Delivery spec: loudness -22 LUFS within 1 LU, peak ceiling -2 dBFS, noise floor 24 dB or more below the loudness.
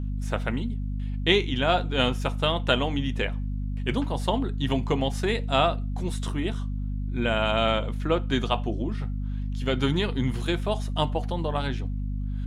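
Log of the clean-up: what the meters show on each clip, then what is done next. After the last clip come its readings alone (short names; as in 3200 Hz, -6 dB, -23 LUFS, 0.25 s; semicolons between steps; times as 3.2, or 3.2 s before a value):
hum 50 Hz; harmonics up to 250 Hz; hum level -27 dBFS; loudness -27.0 LUFS; peak -4.5 dBFS; loudness target -22.0 LUFS
-> notches 50/100/150/200/250 Hz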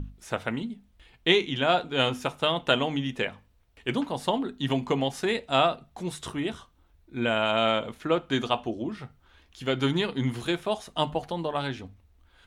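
hum none; loudness -27.5 LUFS; peak -5.0 dBFS; loudness target -22.0 LUFS
-> gain +5.5 dB; limiter -2 dBFS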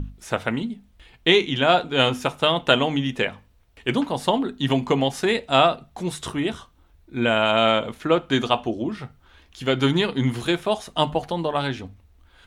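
loudness -22.5 LUFS; peak -2.0 dBFS; noise floor -57 dBFS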